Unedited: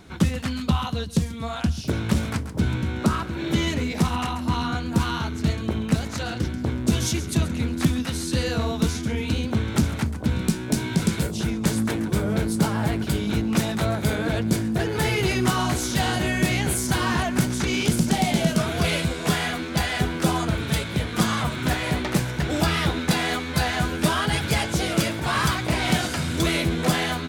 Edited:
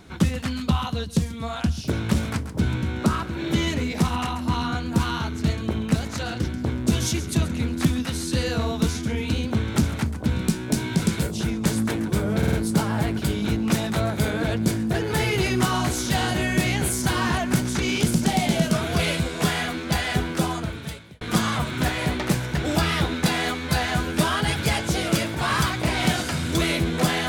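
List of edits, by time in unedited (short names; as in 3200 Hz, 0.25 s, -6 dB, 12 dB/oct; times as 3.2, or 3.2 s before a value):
12.38 stutter 0.05 s, 4 plays
20.08–21.06 fade out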